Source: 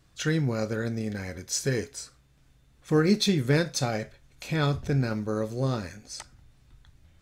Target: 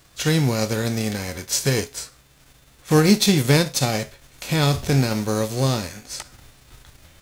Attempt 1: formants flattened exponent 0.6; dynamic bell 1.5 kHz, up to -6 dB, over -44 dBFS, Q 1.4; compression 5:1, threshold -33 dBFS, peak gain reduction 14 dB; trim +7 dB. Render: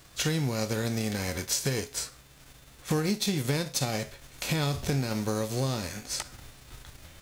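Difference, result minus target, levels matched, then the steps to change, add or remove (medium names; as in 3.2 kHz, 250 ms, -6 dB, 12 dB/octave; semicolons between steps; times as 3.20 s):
compression: peak gain reduction +14 dB
remove: compression 5:1, threshold -33 dBFS, peak gain reduction 14 dB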